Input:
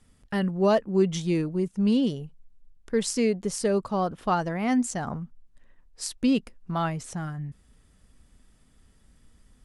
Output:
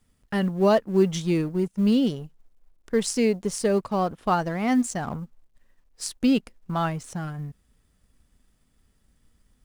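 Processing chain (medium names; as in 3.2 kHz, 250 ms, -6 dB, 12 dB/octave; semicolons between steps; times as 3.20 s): companding laws mixed up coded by A; trim +2.5 dB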